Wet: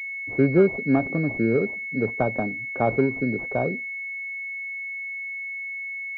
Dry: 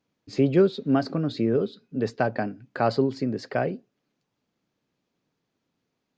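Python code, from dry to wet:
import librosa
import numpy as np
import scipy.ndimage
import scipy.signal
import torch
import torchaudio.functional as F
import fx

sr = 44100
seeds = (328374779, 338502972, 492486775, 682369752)

y = fx.pwm(x, sr, carrier_hz=2200.0)
y = F.gain(torch.from_numpy(y), 1.5).numpy()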